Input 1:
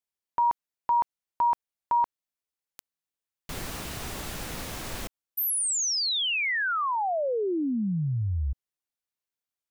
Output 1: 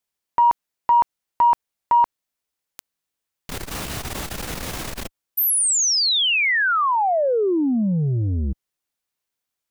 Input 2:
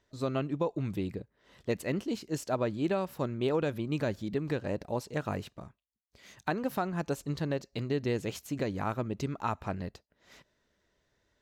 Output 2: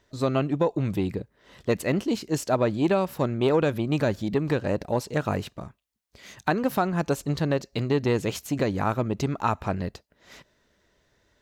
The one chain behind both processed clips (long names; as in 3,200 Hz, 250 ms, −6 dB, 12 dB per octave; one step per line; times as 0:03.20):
saturating transformer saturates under 290 Hz
level +8 dB